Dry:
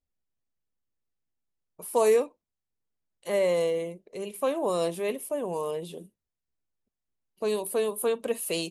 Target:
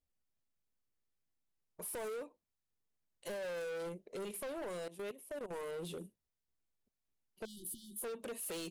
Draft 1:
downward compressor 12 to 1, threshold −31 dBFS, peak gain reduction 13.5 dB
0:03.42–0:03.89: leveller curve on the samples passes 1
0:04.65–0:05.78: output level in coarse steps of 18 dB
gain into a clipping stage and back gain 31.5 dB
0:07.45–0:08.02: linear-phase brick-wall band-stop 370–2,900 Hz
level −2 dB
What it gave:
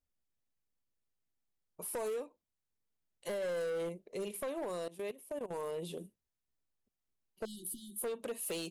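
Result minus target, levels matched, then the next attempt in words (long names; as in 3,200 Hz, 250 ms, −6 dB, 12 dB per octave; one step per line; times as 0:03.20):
gain into a clipping stage and back: distortion −6 dB
downward compressor 12 to 1, threshold −31 dBFS, peak gain reduction 13.5 dB
0:03.42–0:03.89: leveller curve on the samples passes 1
0:04.65–0:05.78: output level in coarse steps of 18 dB
gain into a clipping stage and back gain 37.5 dB
0:07.45–0:08.02: linear-phase brick-wall band-stop 370–2,900 Hz
level −2 dB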